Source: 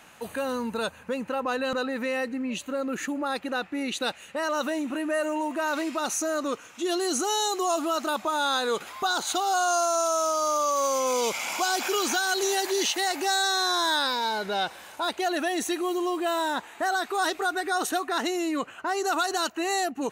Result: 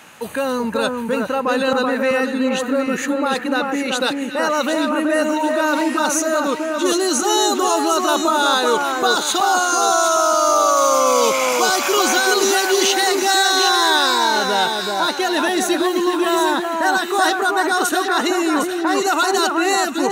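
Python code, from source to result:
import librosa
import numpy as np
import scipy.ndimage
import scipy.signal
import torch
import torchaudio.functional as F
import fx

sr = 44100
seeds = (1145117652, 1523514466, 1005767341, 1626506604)

y = scipy.signal.sosfilt(scipy.signal.butter(2, 88.0, 'highpass', fs=sr, output='sos'), x)
y = fx.notch(y, sr, hz=700.0, q=12.0)
y = fx.echo_alternate(y, sr, ms=379, hz=1700.0, feedback_pct=63, wet_db=-3)
y = F.gain(torch.from_numpy(y), 8.5).numpy()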